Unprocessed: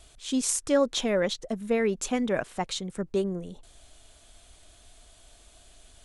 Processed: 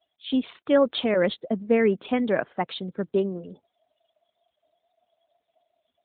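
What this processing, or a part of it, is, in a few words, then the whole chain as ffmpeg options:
mobile call with aggressive noise cancelling: -filter_complex "[0:a]asettb=1/sr,asplit=3[link_01][link_02][link_03];[link_01]atrim=end=1.144[link_04];[link_02]atrim=start=1.14:end=2.09,asetpts=PTS-STARTPTS,afade=type=in:duration=0.004:curve=qsin,afade=type=out:start_time=0.946:duration=0.004:curve=qsin,adynamicequalizer=threshold=0.0158:dfrequency=210:dqfactor=0.73:tfrequency=210:tqfactor=0.73:attack=5:release=100:ratio=0.375:range=1.5:mode=boostabove:tftype=bell[link_05];[link_03]atrim=start=2.086[link_06];[link_04][link_05]acrossfade=duration=0.004:curve1=hsin:curve2=qsin[link_07];[link_07][link_06]acrossfade=duration=0.004:curve1=qsin:curve2=hsin,highpass=160,afftdn=noise_reduction=33:noise_floor=-50,volume=4dB" -ar 8000 -c:a libopencore_amrnb -b:a 12200

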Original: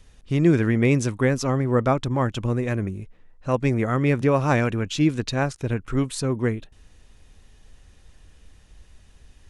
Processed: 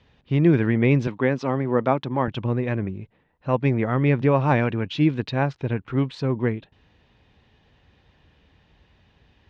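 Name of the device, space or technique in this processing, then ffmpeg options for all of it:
guitar cabinet: -filter_complex "[0:a]highpass=92,equalizer=frequency=140:width_type=q:width=4:gain=3,equalizer=frequency=890:width_type=q:width=4:gain=4,equalizer=frequency=1300:width_type=q:width=4:gain=-3,lowpass=frequency=3900:width=0.5412,lowpass=frequency=3900:width=1.3066,asettb=1/sr,asplit=3[link_01][link_02][link_03];[link_01]atrim=end=1.074[link_04];[link_02]atrim=start=1.07:end=2.28,asetpts=PTS-STARTPTS,afade=type=in:duration=0.004:curve=qsin,afade=type=out:start_time=1.206:duration=0.004:curve=qsin,highpass=170[link_05];[link_03]atrim=start=2.276[link_06];[link_04][link_05]acrossfade=duration=0.004:curve1=hsin:curve2=qsin[link_07];[link_07][link_06]acrossfade=duration=0.004:curve1=qsin:curve2=hsin,deesser=0.7"

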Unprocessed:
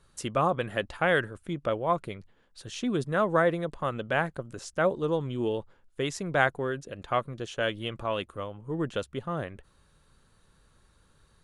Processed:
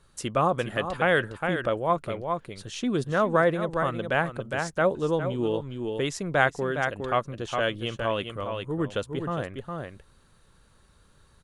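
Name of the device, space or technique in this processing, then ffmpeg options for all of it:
ducked delay: -filter_complex "[0:a]asplit=3[link_01][link_02][link_03];[link_02]adelay=410,volume=-4.5dB[link_04];[link_03]apad=whole_len=522399[link_05];[link_04][link_05]sidechaincompress=threshold=-31dB:ratio=6:attack=11:release=256[link_06];[link_01][link_06]amix=inputs=2:normalize=0,volume=2dB"

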